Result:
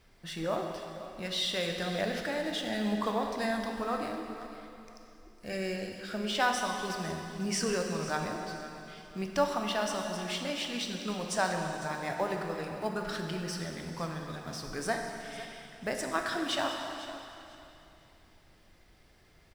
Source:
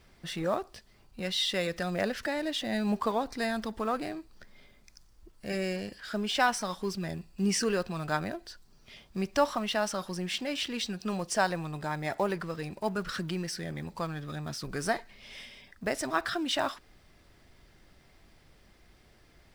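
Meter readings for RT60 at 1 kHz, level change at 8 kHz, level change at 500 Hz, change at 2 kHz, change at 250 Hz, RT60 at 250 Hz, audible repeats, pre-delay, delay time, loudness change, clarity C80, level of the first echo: 2.8 s, -1.0 dB, -1.0 dB, -1.0 dB, -2.0 dB, 2.9 s, 2, 7 ms, 0.502 s, -1.5 dB, 4.0 dB, -15.0 dB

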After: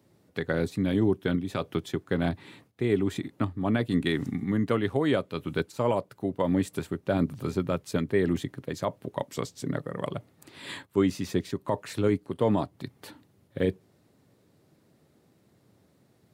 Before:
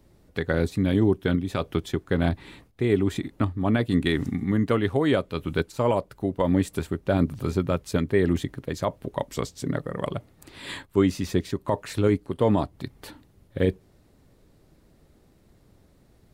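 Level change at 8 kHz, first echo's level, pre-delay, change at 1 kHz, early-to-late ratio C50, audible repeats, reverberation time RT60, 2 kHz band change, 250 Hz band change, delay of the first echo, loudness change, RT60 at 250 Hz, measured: -3.0 dB, none, none, -3.0 dB, none, none, none, -3.0 dB, -3.0 dB, none, -3.5 dB, none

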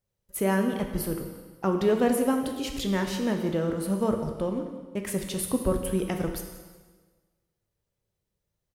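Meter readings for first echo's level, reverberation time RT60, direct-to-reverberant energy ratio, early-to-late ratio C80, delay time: -16.0 dB, 1.4 s, 3.5 dB, 7.5 dB, 0.179 s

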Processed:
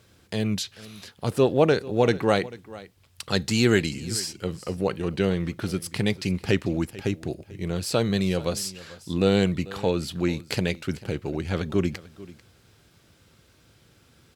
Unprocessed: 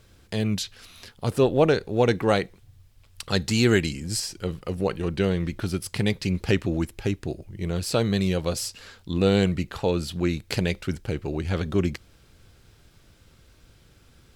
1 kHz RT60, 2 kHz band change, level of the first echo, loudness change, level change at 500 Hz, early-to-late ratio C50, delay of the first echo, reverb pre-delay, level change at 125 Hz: none, 0.0 dB, -19.0 dB, -0.5 dB, 0.0 dB, none, 0.442 s, none, -1.5 dB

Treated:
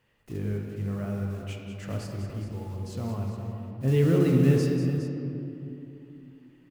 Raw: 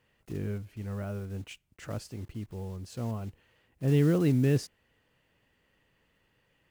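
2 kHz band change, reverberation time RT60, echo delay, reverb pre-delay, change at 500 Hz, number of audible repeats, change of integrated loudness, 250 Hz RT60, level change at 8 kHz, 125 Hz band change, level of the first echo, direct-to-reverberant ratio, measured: +3.0 dB, 2.9 s, 0.191 s, 7 ms, +5.0 dB, 2, +3.0 dB, 3.9 s, +1.0 dB, +4.5 dB, -9.5 dB, -0.5 dB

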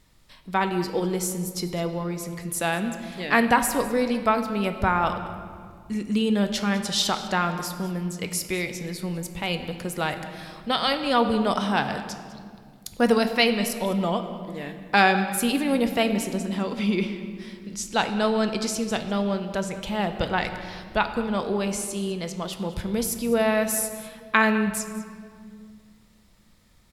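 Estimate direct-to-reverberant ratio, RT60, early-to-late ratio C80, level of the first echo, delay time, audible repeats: 7.0 dB, 2.0 s, 9.5 dB, -17.5 dB, 0.202 s, 1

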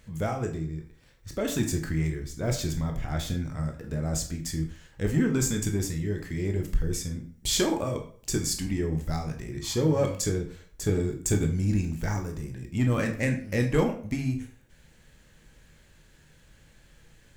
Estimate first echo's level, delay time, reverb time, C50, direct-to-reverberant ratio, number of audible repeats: none, none, 0.50 s, 9.5 dB, 3.0 dB, none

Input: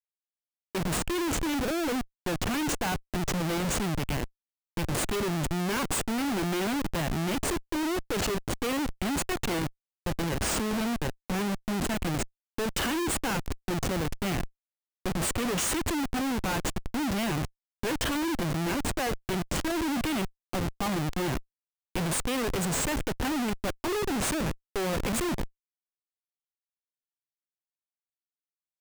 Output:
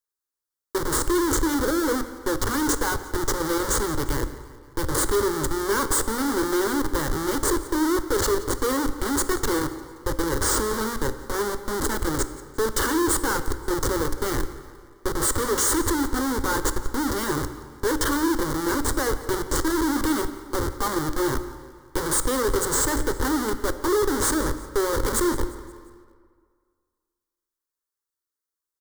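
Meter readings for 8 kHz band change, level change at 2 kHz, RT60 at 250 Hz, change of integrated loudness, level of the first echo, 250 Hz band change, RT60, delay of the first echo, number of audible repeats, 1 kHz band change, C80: +7.5 dB, +4.5 dB, 1.8 s, +5.5 dB, -19.0 dB, +4.0 dB, 1.9 s, 0.175 s, 3, +6.0 dB, 12.0 dB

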